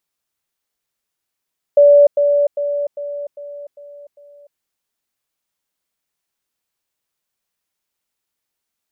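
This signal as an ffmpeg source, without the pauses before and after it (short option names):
-f lavfi -i "aevalsrc='pow(10,(-5-6*floor(t/0.4))/20)*sin(2*PI*577*t)*clip(min(mod(t,0.4),0.3-mod(t,0.4))/0.005,0,1)':d=2.8:s=44100"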